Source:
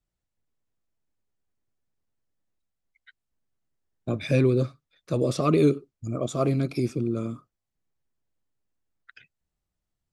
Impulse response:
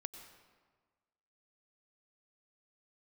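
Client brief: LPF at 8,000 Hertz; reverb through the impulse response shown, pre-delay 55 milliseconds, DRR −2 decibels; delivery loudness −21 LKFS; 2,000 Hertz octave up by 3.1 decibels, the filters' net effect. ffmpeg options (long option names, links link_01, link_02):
-filter_complex "[0:a]lowpass=8000,equalizer=frequency=2000:width_type=o:gain=4,asplit=2[link_01][link_02];[1:a]atrim=start_sample=2205,adelay=55[link_03];[link_02][link_03]afir=irnorm=-1:irlink=0,volume=5dB[link_04];[link_01][link_04]amix=inputs=2:normalize=0,volume=0.5dB"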